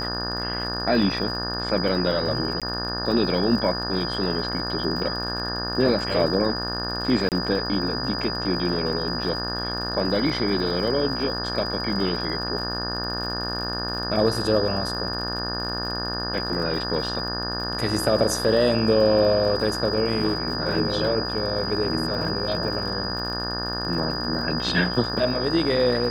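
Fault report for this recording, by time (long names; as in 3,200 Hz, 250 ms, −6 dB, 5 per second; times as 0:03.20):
mains buzz 60 Hz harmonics 30 −31 dBFS
surface crackle 70 per second −33 dBFS
whistle 4,900 Hz −29 dBFS
0:02.60–0:02.62: drop-out 17 ms
0:07.29–0:07.32: drop-out 28 ms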